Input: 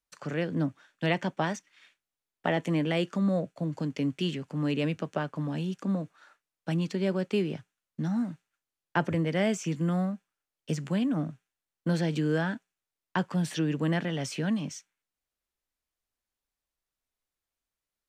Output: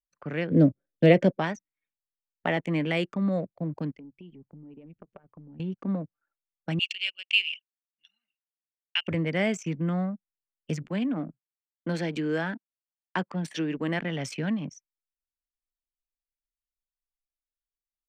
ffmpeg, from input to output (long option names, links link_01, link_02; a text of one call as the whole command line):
ffmpeg -i in.wav -filter_complex "[0:a]asplit=3[link_01][link_02][link_03];[link_01]afade=type=out:start_time=0.5:duration=0.02[link_04];[link_02]lowshelf=frequency=700:width_type=q:width=3:gain=8.5,afade=type=in:start_time=0.5:duration=0.02,afade=type=out:start_time=1.38:duration=0.02[link_05];[link_03]afade=type=in:start_time=1.38:duration=0.02[link_06];[link_04][link_05][link_06]amix=inputs=3:normalize=0,asettb=1/sr,asplit=3[link_07][link_08][link_09];[link_07]atrim=end=3.914[link_10];[link_08]atrim=start=3.91:end=5.6,asetpts=PTS-STARTPTS,afade=type=in:duration=0.004:curve=qsin,afade=type=out:start_time=1.686:duration=0.004:curve=qsin,acompressor=threshold=-42dB:ratio=6:attack=3.2:release=140:knee=1:detection=peak[link_11];[link_09]atrim=start=5.596[link_12];[link_10][link_11]acrossfade=duration=0.004:curve1=hsin:curve2=qsin[link_13];[link_13][link_12]acrossfade=duration=0.004:curve1=qsin:curve2=hsin,asettb=1/sr,asplit=3[link_14][link_15][link_16];[link_14]atrim=end=6.794[link_17];[link_15]atrim=start=6.79:end=9.08,asetpts=PTS-STARTPTS,afade=type=in:duration=0.004:curve=qsin,afade=type=out:start_time=2.286:duration=0.004:curve=qsin,highpass=frequency=2800:width_type=q:width=9.7[link_18];[link_16]atrim=start=9.076[link_19];[link_17][link_18]acrossfade=duration=0.004:curve1=hsin:curve2=qsin[link_20];[link_20][link_19]acrossfade=duration=0.004:curve1=qsin:curve2=hsin,asplit=3[link_21][link_22][link_23];[link_21]afade=type=out:start_time=10.82:duration=0.02[link_24];[link_22]highpass=frequency=180:width=0.5412,highpass=frequency=180:width=1.3066,afade=type=in:start_time=10.82:duration=0.02,afade=type=out:start_time=13.99:duration=0.02[link_25];[link_23]afade=type=in:start_time=13.99:duration=0.02[link_26];[link_24][link_25][link_26]amix=inputs=3:normalize=0,anlmdn=1,equalizer=frequency=2200:width_type=o:width=0.43:gain=6.5" out.wav